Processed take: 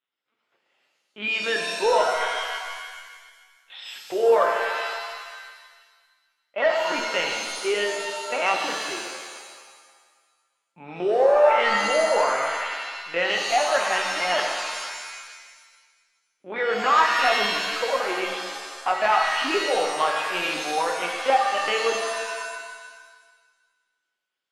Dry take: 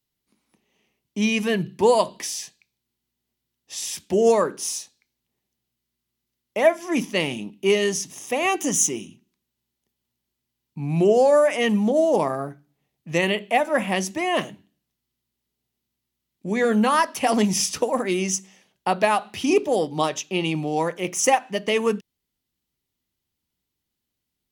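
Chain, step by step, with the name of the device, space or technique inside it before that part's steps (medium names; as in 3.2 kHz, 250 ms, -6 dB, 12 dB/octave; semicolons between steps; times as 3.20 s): talking toy (LPC vocoder at 8 kHz pitch kept; high-pass 540 Hz 12 dB/octave; peaking EQ 1.4 kHz +7.5 dB 0.49 oct; saturation -11.5 dBFS, distortion -20 dB); pitch-shifted reverb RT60 1.5 s, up +7 st, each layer -2 dB, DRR 2.5 dB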